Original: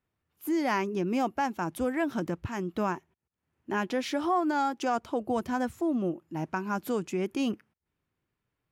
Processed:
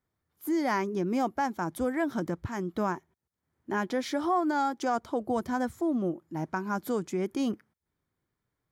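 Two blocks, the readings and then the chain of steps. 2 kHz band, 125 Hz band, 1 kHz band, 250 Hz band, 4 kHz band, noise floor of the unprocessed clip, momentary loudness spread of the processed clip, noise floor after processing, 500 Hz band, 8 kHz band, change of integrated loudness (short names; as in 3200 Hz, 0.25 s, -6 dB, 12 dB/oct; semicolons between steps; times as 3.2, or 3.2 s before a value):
-1.0 dB, 0.0 dB, 0.0 dB, 0.0 dB, -2.5 dB, -85 dBFS, 6 LU, -85 dBFS, 0.0 dB, 0.0 dB, 0.0 dB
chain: bell 2700 Hz -13.5 dB 0.22 oct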